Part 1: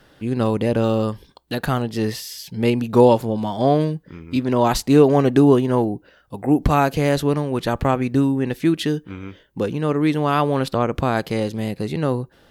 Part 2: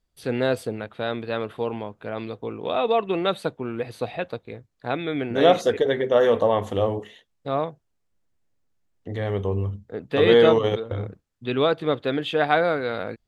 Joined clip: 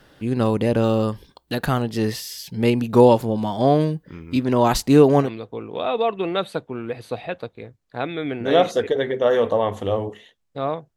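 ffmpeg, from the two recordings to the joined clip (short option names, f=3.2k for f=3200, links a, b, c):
-filter_complex "[0:a]apad=whole_dur=10.96,atrim=end=10.96,atrim=end=5.31,asetpts=PTS-STARTPTS[a];[1:a]atrim=start=2.09:end=7.86,asetpts=PTS-STARTPTS[b];[a][b]acrossfade=d=0.12:c1=tri:c2=tri"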